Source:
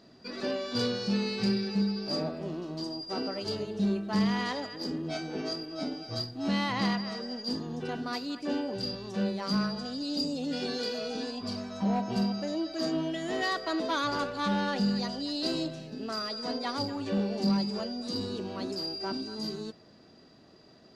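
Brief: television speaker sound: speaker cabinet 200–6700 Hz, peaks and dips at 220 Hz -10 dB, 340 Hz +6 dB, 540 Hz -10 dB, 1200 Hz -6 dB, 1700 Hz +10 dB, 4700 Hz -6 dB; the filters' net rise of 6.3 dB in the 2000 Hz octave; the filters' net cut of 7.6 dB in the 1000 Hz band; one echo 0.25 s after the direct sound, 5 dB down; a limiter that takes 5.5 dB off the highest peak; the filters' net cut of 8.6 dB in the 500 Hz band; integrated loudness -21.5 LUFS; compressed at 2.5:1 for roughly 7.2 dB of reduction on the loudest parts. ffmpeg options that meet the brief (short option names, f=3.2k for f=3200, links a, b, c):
-af "equalizer=f=500:t=o:g=-9,equalizer=f=1k:t=o:g=-5.5,equalizer=f=2k:t=o:g=4,acompressor=threshold=-36dB:ratio=2.5,alimiter=level_in=5.5dB:limit=-24dB:level=0:latency=1,volume=-5.5dB,highpass=f=200:w=0.5412,highpass=f=200:w=1.3066,equalizer=f=220:t=q:w=4:g=-10,equalizer=f=340:t=q:w=4:g=6,equalizer=f=540:t=q:w=4:g=-10,equalizer=f=1.2k:t=q:w=4:g=-6,equalizer=f=1.7k:t=q:w=4:g=10,equalizer=f=4.7k:t=q:w=4:g=-6,lowpass=f=6.7k:w=0.5412,lowpass=f=6.7k:w=1.3066,aecho=1:1:250:0.562,volume=18dB"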